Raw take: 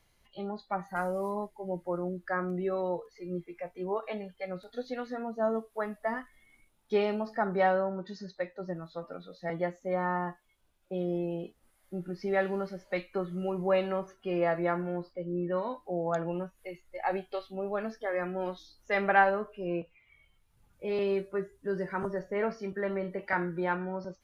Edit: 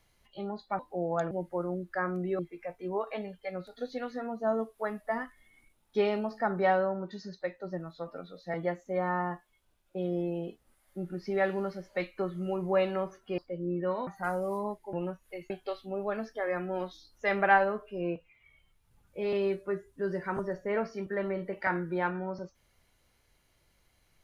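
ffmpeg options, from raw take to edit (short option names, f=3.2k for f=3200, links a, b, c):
-filter_complex "[0:a]asplit=8[a][b][c][d][e][f][g][h];[a]atrim=end=0.792[i];[b]atrim=start=15.738:end=16.262[j];[c]atrim=start=1.648:end=2.732[k];[d]atrim=start=3.348:end=14.342[l];[e]atrim=start=15.048:end=15.742[m];[f]atrim=start=0.788:end=1.652[n];[g]atrim=start=16.258:end=16.832[o];[h]atrim=start=17.158[p];[i][j]acrossfade=d=0.004:c1=hsin:c2=hsin[q];[q][k]acrossfade=d=0.004:c1=hsin:c2=hsin[r];[r][l]acrossfade=d=0.004:c1=hsin:c2=hsin[s];[s][m]acrossfade=d=0.004:c1=hsin:c2=hsin[t];[t][n]acrossfade=d=0.004:c1=hsin:c2=hsin[u];[u][o]acrossfade=d=0.004:c1=hsin:c2=hsin[v];[v][p]acrossfade=d=0.004:c1=hsin:c2=hsin"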